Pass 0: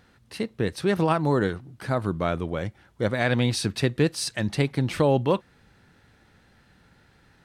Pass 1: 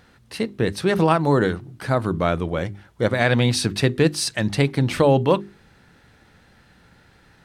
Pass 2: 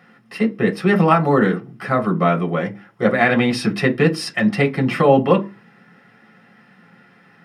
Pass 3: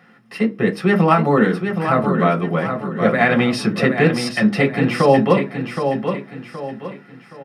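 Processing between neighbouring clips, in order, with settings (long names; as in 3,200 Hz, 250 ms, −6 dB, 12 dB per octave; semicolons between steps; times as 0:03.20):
mains-hum notches 50/100/150/200/250/300/350/400 Hz; level +5 dB
convolution reverb RT60 0.30 s, pre-delay 3 ms, DRR 1 dB; level −6.5 dB
repeating echo 771 ms, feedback 37%, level −7 dB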